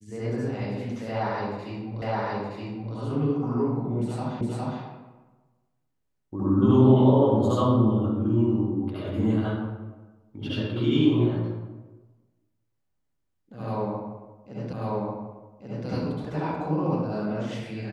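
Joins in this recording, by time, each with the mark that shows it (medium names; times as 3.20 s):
2.02 s: repeat of the last 0.92 s
4.41 s: repeat of the last 0.41 s
14.73 s: repeat of the last 1.14 s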